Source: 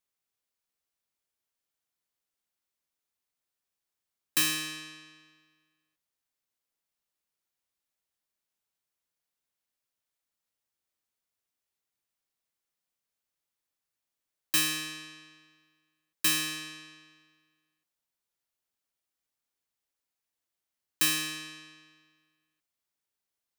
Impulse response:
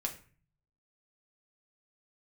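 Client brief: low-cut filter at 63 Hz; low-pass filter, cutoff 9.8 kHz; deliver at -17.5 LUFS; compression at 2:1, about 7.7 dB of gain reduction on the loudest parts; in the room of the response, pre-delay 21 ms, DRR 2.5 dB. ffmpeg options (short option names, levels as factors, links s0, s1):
-filter_complex "[0:a]highpass=63,lowpass=9800,acompressor=threshold=0.0126:ratio=2,asplit=2[s0][s1];[1:a]atrim=start_sample=2205,adelay=21[s2];[s1][s2]afir=irnorm=-1:irlink=0,volume=0.631[s3];[s0][s3]amix=inputs=2:normalize=0,volume=10"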